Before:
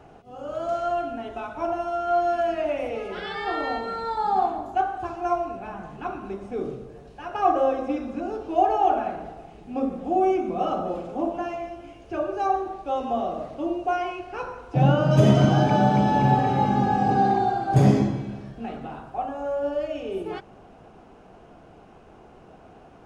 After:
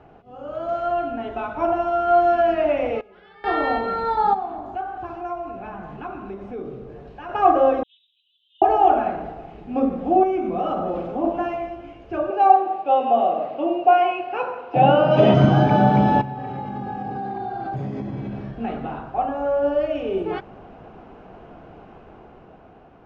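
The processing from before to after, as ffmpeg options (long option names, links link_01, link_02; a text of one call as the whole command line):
ffmpeg -i in.wav -filter_complex "[0:a]asplit=3[link_01][link_02][link_03];[link_01]afade=type=out:start_time=4.33:duration=0.02[link_04];[link_02]acompressor=threshold=-40dB:ratio=2:attack=3.2:release=140:knee=1:detection=peak,afade=type=in:start_time=4.33:duration=0.02,afade=type=out:start_time=7.28:duration=0.02[link_05];[link_03]afade=type=in:start_time=7.28:duration=0.02[link_06];[link_04][link_05][link_06]amix=inputs=3:normalize=0,asettb=1/sr,asplit=3[link_07][link_08][link_09];[link_07]atrim=end=7.834[link_10];[link_08]atrim=start=7.83:end=8.62,asetpts=PTS-STARTPTS,afade=type=in:duration=0.004:curve=qsin,afade=type=out:start_time=0.786:duration=0.004:curve=qsin,asuperpass=centerf=3400:order=8:qfactor=4.1[link_11];[link_09]atrim=start=8.616[link_12];[link_10][link_11]acrossfade=duration=0.004:curve1=hsin:curve2=qsin[link_13];[link_13][link_12]acrossfade=duration=0.004:curve1=qsin:curve2=hsin,asettb=1/sr,asplit=3[link_14][link_15][link_16];[link_14]atrim=end=10.234[link_17];[link_15]atrim=start=10.23:end=11.24,asetpts=PTS-STARTPTS,afade=type=in:duration=0.004:curve=qsin,afade=type=out:start_time=1.006:duration=0.004:curve=qsin,acompressor=threshold=-27dB:ratio=2.5:attack=3.2:release=140:knee=1:detection=peak[link_18];[link_16]atrim=start=11.236[link_19];[link_17][link_18]acrossfade=duration=0.004:curve1=hsin:curve2=qsin[link_20];[link_20][link_19]acrossfade=duration=0.004:curve1=qsin:curve2=hsin,asettb=1/sr,asplit=3[link_21][link_22][link_23];[link_21]atrim=end=12.304[link_24];[link_22]atrim=start=12.3:end=15.34,asetpts=PTS-STARTPTS,afade=type=in:duration=0.004:curve=qsin,afade=type=out:start_time=3.036:duration=0.004:curve=qsin,highpass=220,equalizer=frequency=530:width_type=q:width=4:gain=4,equalizer=frequency=760:width_type=q:width=4:gain=8,equalizer=frequency=2700:width_type=q:width=4:gain=8,lowpass=frequency=5400:width=0.5412,lowpass=frequency=5400:width=1.3066[link_25];[link_23]atrim=start=15.336[link_26];[link_24][link_25]acrossfade=duration=0.004:curve1=hsin:curve2=qsin[link_27];[link_27][link_26]acrossfade=duration=0.004:curve1=qsin:curve2=hsin,asettb=1/sr,asplit=3[link_28][link_29][link_30];[link_28]atrim=end=16.214[link_31];[link_29]atrim=start=16.21:end=18.49,asetpts=PTS-STARTPTS,afade=type=in:duration=0.004:curve=qsin,afade=type=out:start_time=2.276:duration=0.004:curve=qsin,acompressor=threshold=-31dB:ratio=10:attack=3.2:release=140:knee=1:detection=peak[link_32];[link_30]atrim=start=18.486[link_33];[link_31][link_32]acrossfade=duration=0.004:curve1=hsin:curve2=qsin[link_34];[link_34][link_33]acrossfade=duration=0.004:curve1=qsin:curve2=hsin,asplit=3[link_35][link_36][link_37];[link_35]atrim=end=3.01,asetpts=PTS-STARTPTS,afade=type=out:start_time=2.88:duration=0.13:curve=log:silence=0.0749894[link_38];[link_36]atrim=start=3.01:end=3.44,asetpts=PTS-STARTPTS,volume=-22.5dB[link_39];[link_37]atrim=start=3.44,asetpts=PTS-STARTPTS,afade=type=in:duration=0.13:curve=log:silence=0.0749894[link_40];[link_38][link_39][link_40]concat=n=3:v=0:a=1,lowpass=3000,dynaudnorm=framelen=160:gausssize=13:maxgain=6dB" out.wav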